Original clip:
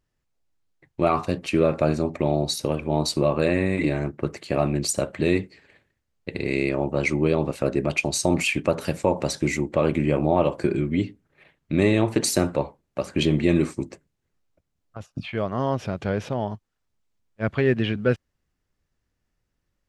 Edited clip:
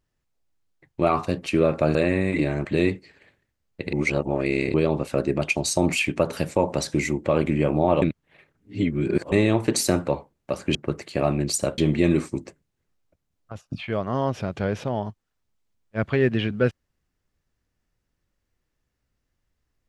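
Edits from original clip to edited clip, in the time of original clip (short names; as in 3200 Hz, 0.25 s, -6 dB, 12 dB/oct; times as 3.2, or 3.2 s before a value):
1.95–3.4 cut
4.1–5.13 move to 13.23
6.41–7.22 reverse
10.5–11.8 reverse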